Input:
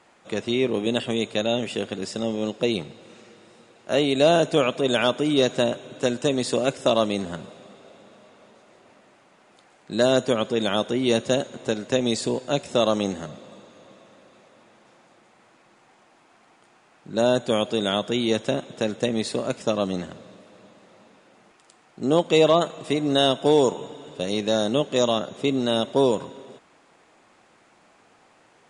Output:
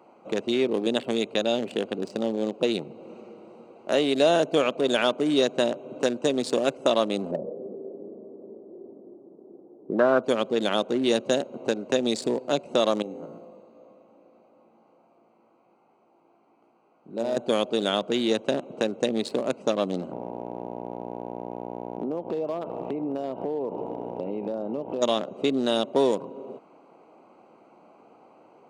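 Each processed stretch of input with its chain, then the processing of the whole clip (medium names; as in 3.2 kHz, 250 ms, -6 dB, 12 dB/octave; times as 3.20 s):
7.31–10.24 s: distance through air 200 m + touch-sensitive low-pass 360–1300 Hz up, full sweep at -22 dBFS
13.02–17.37 s: feedback comb 57 Hz, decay 0.76 s, mix 80% + bit-crushed delay 123 ms, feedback 35%, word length 8-bit, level -14 dB
20.11–25.01 s: low-pass 2.8 kHz 24 dB/octave + mains buzz 60 Hz, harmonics 16, -37 dBFS -1 dB/octave + compression 5:1, threshold -28 dBFS
whole clip: local Wiener filter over 25 samples; high-pass 220 Hz 12 dB/octave; compression 1.5:1, threshold -41 dBFS; trim +7.5 dB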